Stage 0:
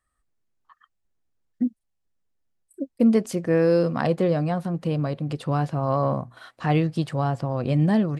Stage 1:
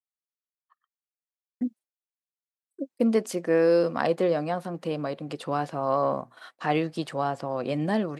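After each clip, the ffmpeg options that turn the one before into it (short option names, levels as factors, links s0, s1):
-af "highpass=300,agate=range=0.0224:threshold=0.00708:ratio=3:detection=peak"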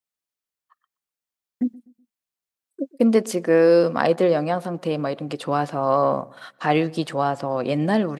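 -filter_complex "[0:a]asplit=2[s0][s1];[s1]adelay=124,lowpass=f=1100:p=1,volume=0.0841,asplit=2[s2][s3];[s3]adelay=124,lowpass=f=1100:p=1,volume=0.38,asplit=2[s4][s5];[s5]adelay=124,lowpass=f=1100:p=1,volume=0.38[s6];[s0][s2][s4][s6]amix=inputs=4:normalize=0,volume=1.88"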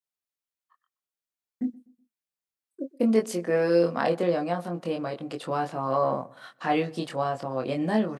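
-filter_complex "[0:a]asplit=2[s0][s1];[s1]adelay=23,volume=0.668[s2];[s0][s2]amix=inputs=2:normalize=0,volume=0.447"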